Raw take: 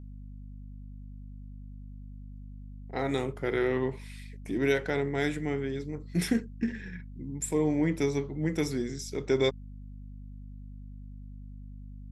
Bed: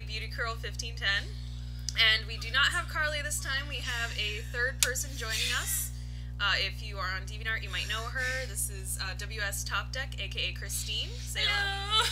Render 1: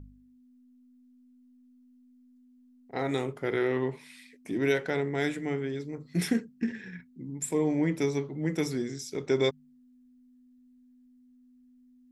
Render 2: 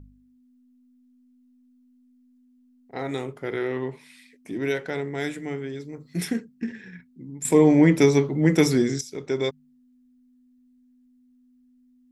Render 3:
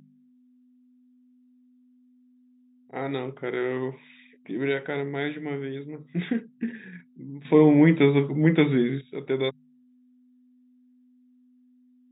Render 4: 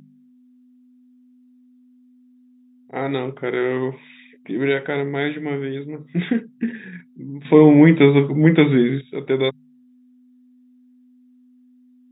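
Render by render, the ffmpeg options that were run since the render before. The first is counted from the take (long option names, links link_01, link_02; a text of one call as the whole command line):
ffmpeg -i in.wav -af "bandreject=frequency=50:width_type=h:width=4,bandreject=frequency=100:width_type=h:width=4,bandreject=frequency=150:width_type=h:width=4,bandreject=frequency=200:width_type=h:width=4" out.wav
ffmpeg -i in.wav -filter_complex "[0:a]asettb=1/sr,asplit=3[link_01][link_02][link_03];[link_01]atrim=end=4.924[link_04];[link_02]atrim=start=4.92:end=6.25,asetpts=PTS-STARTPTS,afade=type=in:duration=0.004:curve=qsin,afade=type=out:start_time=1.326:duration=0.004:curve=qsin,highshelf=frequency=6600:gain=5.5[link_05];[link_03]atrim=start=6.246[link_06];[link_04][link_05]acrossfade=duration=0.004:curve1=hsin:curve2=qsin[link_07];[link_07][link_06]acrossfade=duration=0.004:curve1=qsin:curve2=hsin,asplit=3[link_08][link_09][link_10];[link_08]atrim=end=7.452[link_11];[link_09]atrim=start=7.448:end=9.012,asetpts=PTS-STARTPTS,volume=11dB[link_12];[link_10]atrim=start=9.008[link_13];[link_11][link_12]acrossfade=duration=0.004:curve1=hsin:curve2=hsin[link_14];[link_14][link_13]acrossfade=duration=0.004:curve1=hsin:curve2=hsin" out.wav
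ffmpeg -i in.wav -af "afftfilt=real='re*between(b*sr/4096,120,3800)':imag='im*between(b*sr/4096,120,3800)':win_size=4096:overlap=0.75,adynamicequalizer=threshold=0.0447:dfrequency=530:dqfactor=0.83:tfrequency=530:tqfactor=0.83:attack=5:release=100:ratio=0.375:range=2:mode=cutabove:tftype=bell" out.wav
ffmpeg -i in.wav -af "volume=6.5dB,alimiter=limit=-1dB:level=0:latency=1" out.wav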